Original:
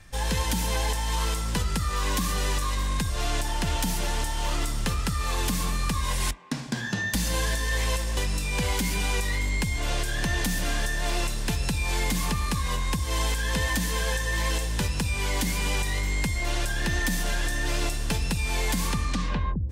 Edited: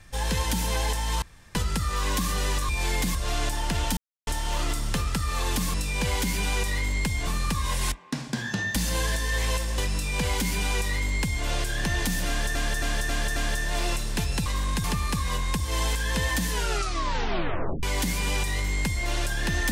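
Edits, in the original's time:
1.22–1.55 room tone
2.69–3.07 swap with 11.77–12.23
3.89–4.19 mute
8.31–9.84 copy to 5.66
10.67–10.94 loop, 5 plays
13.88 tape stop 1.34 s

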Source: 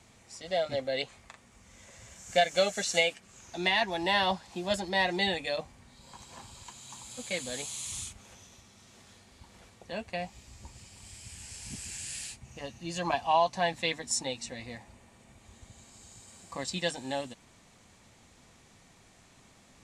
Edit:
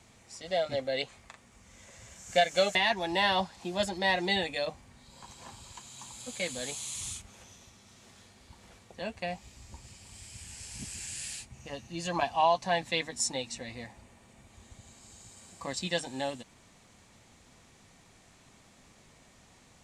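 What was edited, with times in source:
2.75–3.66 cut

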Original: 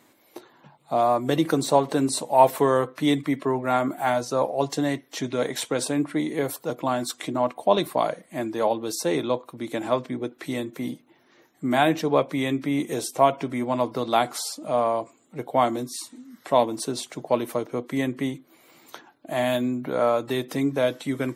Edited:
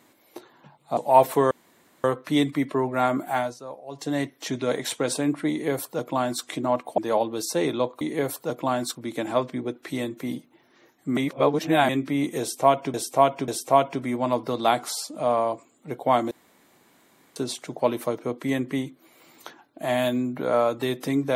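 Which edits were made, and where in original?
0.97–2.21 cut
2.75 insert room tone 0.53 s
4.01–4.92 dip -15 dB, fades 0.31 s
6.21–7.15 copy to 9.51
7.69–8.48 cut
11.73–12.45 reverse
12.96–13.5 loop, 3 plays
15.79–16.84 room tone

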